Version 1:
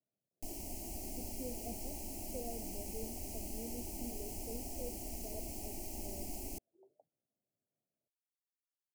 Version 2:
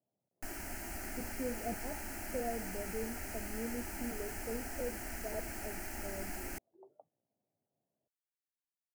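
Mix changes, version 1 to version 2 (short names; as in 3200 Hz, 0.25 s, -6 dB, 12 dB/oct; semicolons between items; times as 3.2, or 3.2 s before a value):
speech +6.0 dB; master: remove Butterworth band-stop 1500 Hz, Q 0.61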